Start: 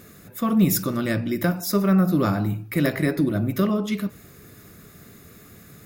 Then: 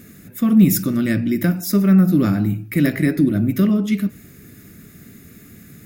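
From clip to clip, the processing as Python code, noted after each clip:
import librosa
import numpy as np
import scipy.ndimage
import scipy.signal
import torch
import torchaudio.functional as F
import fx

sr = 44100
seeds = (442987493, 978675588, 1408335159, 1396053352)

y = fx.graphic_eq(x, sr, hz=(250, 500, 1000, 2000, 4000), db=(6, -5, -10, 3, -4))
y = y * librosa.db_to_amplitude(3.0)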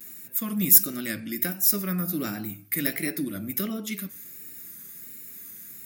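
y = fx.vibrato(x, sr, rate_hz=1.4, depth_cents=88.0)
y = fx.riaa(y, sr, side='recording')
y = y * librosa.db_to_amplitude(-8.0)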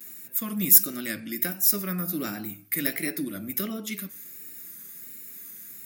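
y = fx.highpass(x, sr, hz=170.0, slope=6)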